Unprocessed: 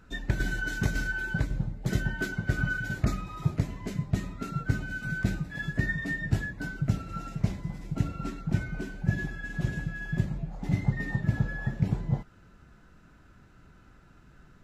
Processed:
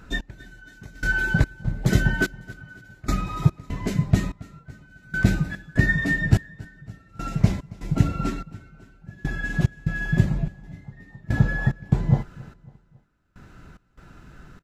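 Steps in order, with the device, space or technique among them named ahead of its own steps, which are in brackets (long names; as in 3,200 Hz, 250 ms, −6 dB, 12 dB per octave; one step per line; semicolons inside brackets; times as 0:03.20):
trance gate with a delay (gate pattern "x....xx.xx" 73 BPM −24 dB; repeating echo 275 ms, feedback 48%, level −22 dB)
level +9 dB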